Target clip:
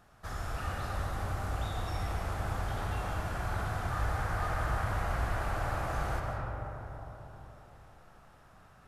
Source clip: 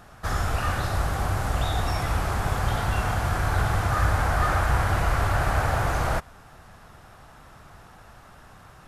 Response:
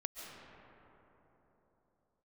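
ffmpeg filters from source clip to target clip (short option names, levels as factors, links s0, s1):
-filter_complex "[1:a]atrim=start_sample=2205[s0];[0:a][s0]afir=irnorm=-1:irlink=0,volume=0.355"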